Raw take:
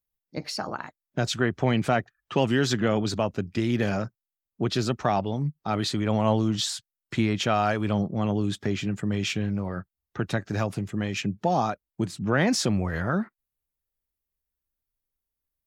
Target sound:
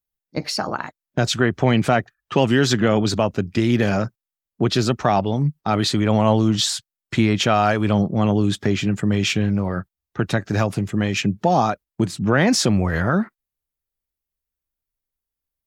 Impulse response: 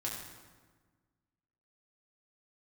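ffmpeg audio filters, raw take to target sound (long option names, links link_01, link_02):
-filter_complex "[0:a]agate=range=-8dB:threshold=-41dB:ratio=16:detection=peak,asplit=2[link_01][link_02];[link_02]alimiter=limit=-16.5dB:level=0:latency=1:release=254,volume=-3dB[link_03];[link_01][link_03]amix=inputs=2:normalize=0,volume=3dB"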